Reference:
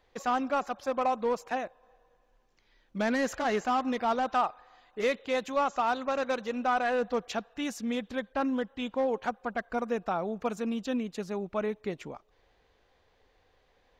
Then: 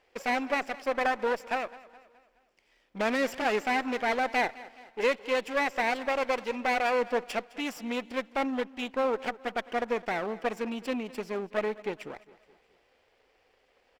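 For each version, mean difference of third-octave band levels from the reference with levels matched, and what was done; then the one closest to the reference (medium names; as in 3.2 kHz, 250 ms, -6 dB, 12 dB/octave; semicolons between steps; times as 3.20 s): 5.0 dB: comb filter that takes the minimum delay 0.39 ms; tone controls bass -14 dB, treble -5 dB; feedback delay 210 ms, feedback 47%, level -19.5 dB; trim +4 dB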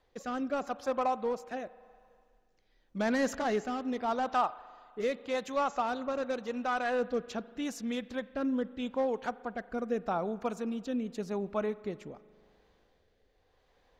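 2.5 dB: peaking EQ 2.4 kHz -3 dB 0.99 oct; rotary cabinet horn 0.85 Hz; spring tank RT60 2.1 s, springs 40 ms, chirp 55 ms, DRR 18 dB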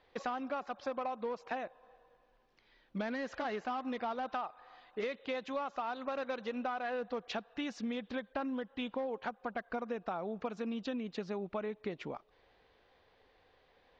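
3.5 dB: low-pass 4.9 kHz 24 dB/octave; bass shelf 87 Hz -9 dB; compression 10:1, threshold -35 dBFS, peak gain reduction 13.5 dB; trim +1 dB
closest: second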